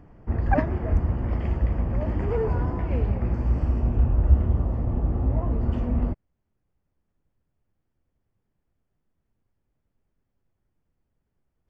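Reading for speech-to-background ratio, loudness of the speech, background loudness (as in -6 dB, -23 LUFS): -4.0 dB, -29.5 LUFS, -25.5 LUFS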